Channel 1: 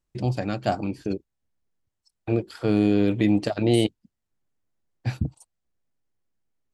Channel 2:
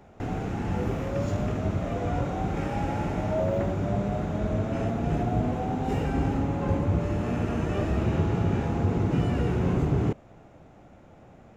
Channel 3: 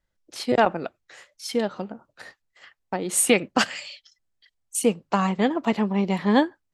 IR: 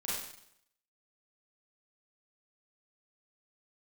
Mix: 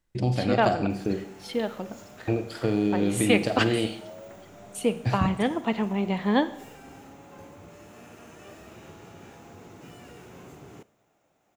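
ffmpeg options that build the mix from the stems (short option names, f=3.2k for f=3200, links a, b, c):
-filter_complex "[0:a]acompressor=threshold=-23dB:ratio=6,volume=0.5dB,asplit=2[a][b];[b]volume=-9dB[c];[1:a]aemphasis=mode=production:type=riaa,adelay=700,volume=-15dB,asplit=2[d][e];[e]volume=-20.5dB[f];[2:a]highshelf=f=4.5k:t=q:w=1.5:g=-6.5,volume=-4.5dB,asplit=2[g][h];[h]volume=-15.5dB[i];[3:a]atrim=start_sample=2205[j];[c][f][i]amix=inputs=3:normalize=0[k];[k][j]afir=irnorm=-1:irlink=0[l];[a][d][g][l]amix=inputs=4:normalize=0"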